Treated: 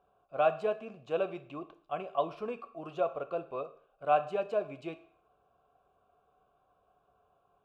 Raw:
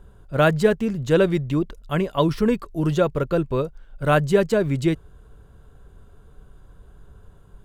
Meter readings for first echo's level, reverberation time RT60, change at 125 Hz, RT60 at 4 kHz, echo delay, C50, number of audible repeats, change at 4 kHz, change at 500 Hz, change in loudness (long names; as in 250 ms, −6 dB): no echo audible, 0.55 s, −28.0 dB, 0.55 s, no echo audible, 14.5 dB, no echo audible, −17.5 dB, −11.5 dB, −12.5 dB